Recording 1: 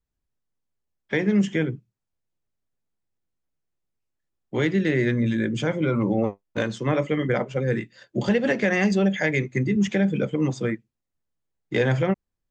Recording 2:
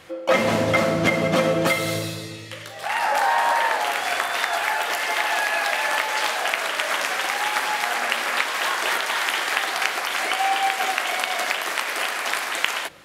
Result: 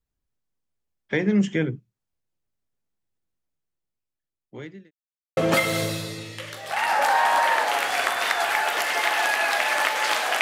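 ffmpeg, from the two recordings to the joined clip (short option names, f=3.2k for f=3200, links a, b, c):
-filter_complex "[0:a]apad=whole_dur=10.41,atrim=end=10.41,asplit=2[a][b];[a]atrim=end=4.91,asetpts=PTS-STARTPTS,afade=t=out:st=3.29:d=1.62[c];[b]atrim=start=4.91:end=5.37,asetpts=PTS-STARTPTS,volume=0[d];[1:a]atrim=start=1.5:end=6.54,asetpts=PTS-STARTPTS,afade=t=in:d=0.004:c=hsin[e];[c][d][e]concat=n=3:v=0:a=1"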